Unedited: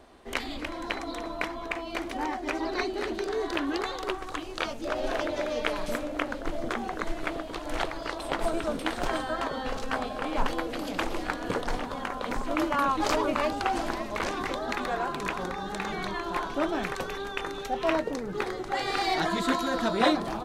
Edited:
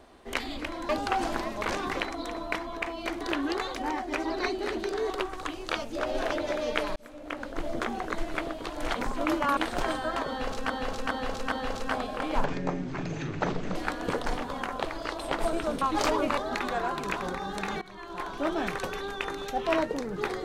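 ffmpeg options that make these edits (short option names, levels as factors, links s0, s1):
-filter_complex "[0:a]asplit=18[s0][s1][s2][s3][s4][s5][s6][s7][s8][s9][s10][s11][s12][s13][s14][s15][s16][s17];[s0]atrim=end=0.892[s18];[s1]atrim=start=13.428:end=14.542[s19];[s2]atrim=start=0.888:end=2.102[s20];[s3]atrim=start=3.448:end=3.992[s21];[s4]atrim=start=2.098:end=3.452[s22];[s5]atrim=start=3.988:end=5.85,asetpts=PTS-STARTPTS,afade=t=out:st=1.858:d=0.004:c=hsin[s23];[s6]atrim=start=5.85:end=7.832,asetpts=PTS-STARTPTS,afade=t=in:d=0.72[s24];[s7]atrim=start=12.238:end=12.872[s25];[s8]atrim=start=8.818:end=9.952[s26];[s9]atrim=start=9.538:end=9.952[s27];[s10]atrim=start=9.538:end=9.952[s28];[s11]atrim=start=9.538:end=10.464[s29];[s12]atrim=start=10.46:end=11.17,asetpts=PTS-STARTPTS,asetrate=23814,aresample=44100,atrim=end_sample=57983,asetpts=PTS-STARTPTS[s30];[s13]atrim=start=11.166:end=12.242[s31];[s14]atrim=start=7.828:end=8.822[s32];[s15]atrim=start=12.868:end=13.432[s33];[s16]atrim=start=14.538:end=15.98,asetpts=PTS-STARTPTS,afade=t=out:st=1.438:d=0.004:c=hsin:silence=0.1[s34];[s17]atrim=start=15.98,asetpts=PTS-STARTPTS,afade=t=in:d=0.78:silence=0.1[s35];[s18][s19]acrossfade=d=0.004:c1=hsin:c2=hsin[s36];[s36][s20]acrossfade=d=0.004:c1=hsin:c2=hsin[s37];[s37][s21]acrossfade=d=0.004:c1=hsin:c2=hsin[s38];[s38][s22]acrossfade=d=0.004:c1=hsin:c2=hsin[s39];[s23][s24]concat=n=2:v=0:a=1[s40];[s39][s40]acrossfade=d=0.004:c1=hsin:c2=hsin[s41];[s41][s25]acrossfade=d=0.004:c1=hsin:c2=hsin[s42];[s42][s26]acrossfade=d=0.004:c1=hsin:c2=hsin[s43];[s43][s27]acrossfade=d=0.004:c1=hsin:c2=hsin[s44];[s44][s28]acrossfade=d=0.004:c1=hsin:c2=hsin[s45];[s45][s29]acrossfade=d=0.004:c1=hsin:c2=hsin[s46];[s46][s30]acrossfade=d=0.004:c1=hsin:c2=hsin[s47];[s47][s31]acrossfade=d=0.004:c1=hsin:c2=hsin[s48];[s48][s32]acrossfade=d=0.004:c1=hsin:c2=hsin[s49];[s49][s33]acrossfade=d=0.004:c1=hsin:c2=hsin[s50];[s34][s35]concat=n=2:v=0:a=1[s51];[s50][s51]acrossfade=d=0.004:c1=hsin:c2=hsin"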